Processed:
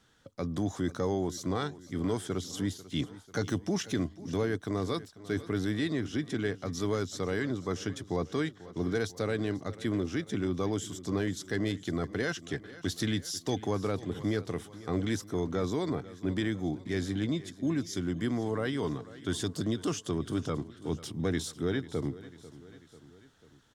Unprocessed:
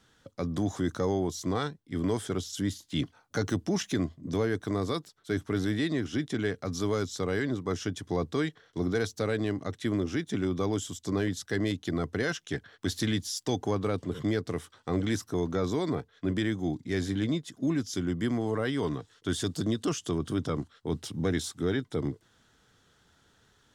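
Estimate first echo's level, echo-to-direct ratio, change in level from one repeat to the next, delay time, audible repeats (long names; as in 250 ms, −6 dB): −17.5 dB, −16.0 dB, −4.5 dB, 493 ms, 3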